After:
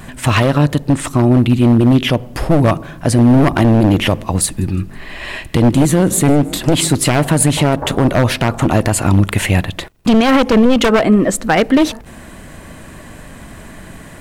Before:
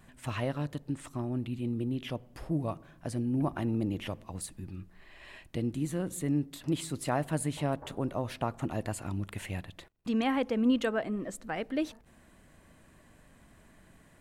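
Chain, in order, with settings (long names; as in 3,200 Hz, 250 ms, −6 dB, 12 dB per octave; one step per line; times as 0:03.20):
wavefolder on the positive side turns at −29 dBFS
0:04.45–0:06.88: echo with shifted repeats 161 ms, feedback 54%, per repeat +43 Hz, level −23 dB
boost into a limiter +25 dB
level −1 dB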